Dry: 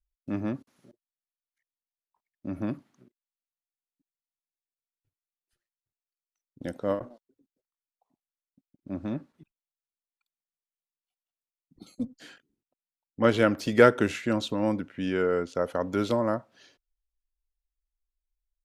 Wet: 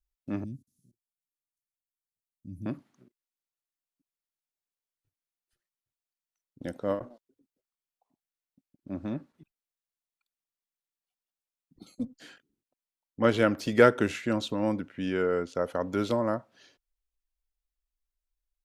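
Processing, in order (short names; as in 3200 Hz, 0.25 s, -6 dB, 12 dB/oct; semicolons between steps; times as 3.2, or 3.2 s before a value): 0.44–2.66 Chebyshev band-stop 140–8300 Hz, order 2; gain -1.5 dB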